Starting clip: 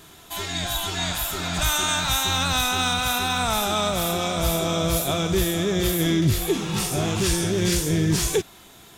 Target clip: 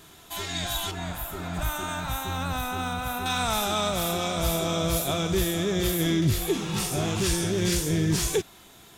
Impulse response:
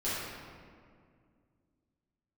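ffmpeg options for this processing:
-filter_complex "[0:a]asettb=1/sr,asplit=3[link_01][link_02][link_03];[link_01]atrim=end=0.914[link_04];[link_02]atrim=start=0.91:end=3.26,asetpts=PTS-STARTPTS,afade=type=in:duration=0.004:curve=qsin,afade=type=out:start_time=2.346:duration=0.004:curve=qsin,equalizer=frequency=5000:width=0.5:gain=-14[link_05];[link_03]atrim=start=3.256[link_06];[link_04][link_05]acrossfade=duration=0.004:curve1=hsin:curve2=qsin[link_07];[link_07][link_06]acrossfade=duration=0.004:curve1=qsin:curve2=hsin,volume=-3dB"

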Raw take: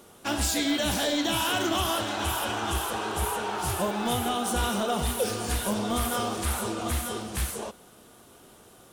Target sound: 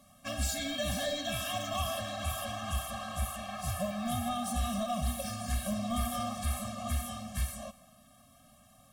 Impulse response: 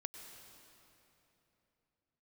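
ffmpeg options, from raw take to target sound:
-filter_complex "[0:a]asplit=2[link_01][link_02];[link_02]lowshelf=frequency=110:gain=10[link_03];[1:a]atrim=start_sample=2205,afade=type=out:start_time=0.34:duration=0.01,atrim=end_sample=15435[link_04];[link_03][link_04]afir=irnorm=-1:irlink=0,volume=-5.5dB[link_05];[link_01][link_05]amix=inputs=2:normalize=0,afftfilt=real='re*eq(mod(floor(b*sr/1024/260),2),0)':imag='im*eq(mod(floor(b*sr/1024/260),2),0)':win_size=1024:overlap=0.75,volume=-7dB"

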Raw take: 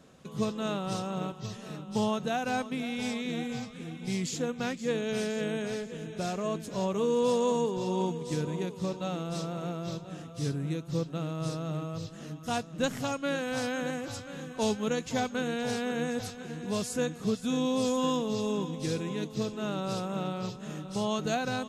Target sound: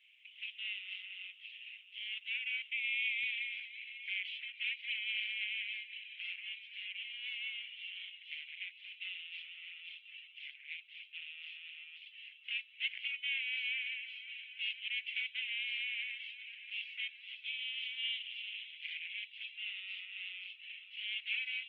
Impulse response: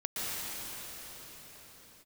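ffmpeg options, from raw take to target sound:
-af "aeval=exprs='clip(val(0),-1,0.01)':channel_layout=same,asuperpass=centerf=2600:order=8:qfactor=2.4,volume=9dB" -ar 48000 -c:a libopus -b:a 16k

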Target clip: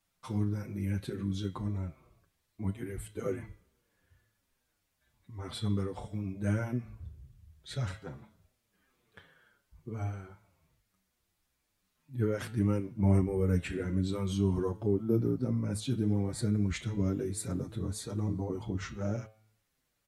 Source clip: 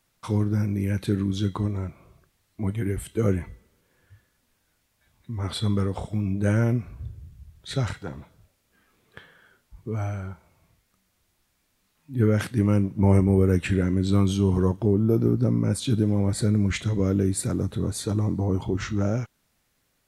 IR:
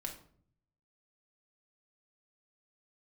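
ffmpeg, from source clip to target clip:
-filter_complex "[0:a]bandreject=frequency=109.2:width_type=h:width=4,bandreject=frequency=218.4:width_type=h:width=4,bandreject=frequency=327.6:width_type=h:width=4,bandreject=frequency=436.8:width_type=h:width=4,bandreject=frequency=546:width_type=h:width=4,bandreject=frequency=655.2:width_type=h:width=4,bandreject=frequency=764.4:width_type=h:width=4,bandreject=frequency=873.6:width_type=h:width=4,bandreject=frequency=982.8:width_type=h:width=4,bandreject=frequency=1092:width_type=h:width=4,bandreject=frequency=1201.2:width_type=h:width=4,bandreject=frequency=1310.4:width_type=h:width=4,bandreject=frequency=1419.6:width_type=h:width=4,bandreject=frequency=1528.8:width_type=h:width=4,bandreject=frequency=1638:width_type=h:width=4,bandreject=frequency=1747.2:width_type=h:width=4,bandreject=frequency=1856.4:width_type=h:width=4,bandreject=frequency=1965.6:width_type=h:width=4,bandreject=frequency=2074.8:width_type=h:width=4,bandreject=frequency=2184:width_type=h:width=4,bandreject=frequency=2293.2:width_type=h:width=4,bandreject=frequency=2402.4:width_type=h:width=4,bandreject=frequency=2511.6:width_type=h:width=4,bandreject=frequency=2620.8:width_type=h:width=4,bandreject=frequency=2730:width_type=h:width=4,bandreject=frequency=2839.2:width_type=h:width=4,bandreject=frequency=2948.4:width_type=h:width=4,bandreject=frequency=3057.6:width_type=h:width=4,bandreject=frequency=3166.8:width_type=h:width=4,bandreject=frequency=3276:width_type=h:width=4,asplit=2[link_01][link_02];[link_02]adelay=6.6,afreqshift=-2.3[link_03];[link_01][link_03]amix=inputs=2:normalize=1,volume=-5.5dB"

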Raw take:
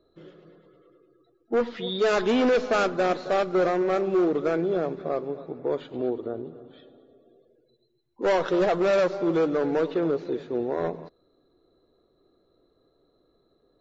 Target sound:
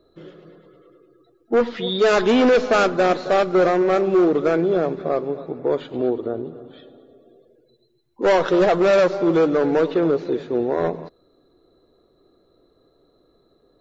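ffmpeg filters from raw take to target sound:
ffmpeg -i in.wav -af "acontrast=60" out.wav

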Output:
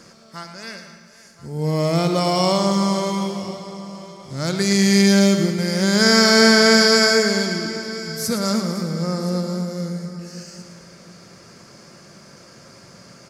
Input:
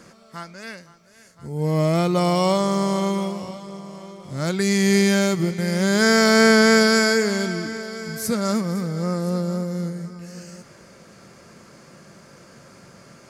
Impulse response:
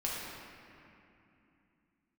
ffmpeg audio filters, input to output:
-filter_complex "[0:a]equalizer=frequency=5100:width=2:gain=7.5,aecho=1:1:111|222|333|444|555:0.355|0.17|0.0817|0.0392|0.0188,asplit=2[link_01][link_02];[1:a]atrim=start_sample=2205,adelay=67[link_03];[link_02][link_03]afir=irnorm=-1:irlink=0,volume=-16.5dB[link_04];[link_01][link_04]amix=inputs=2:normalize=0"

